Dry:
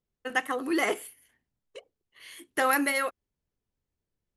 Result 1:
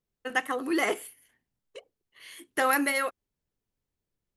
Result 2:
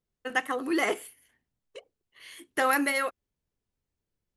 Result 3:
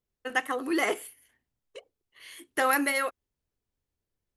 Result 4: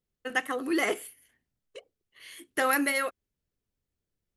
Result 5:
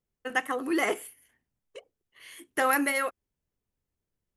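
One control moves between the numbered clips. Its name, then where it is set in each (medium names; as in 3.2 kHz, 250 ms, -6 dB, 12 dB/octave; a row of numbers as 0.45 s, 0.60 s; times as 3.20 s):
peaking EQ, frequency: 66 Hz, 14 kHz, 180 Hz, 920 Hz, 4.1 kHz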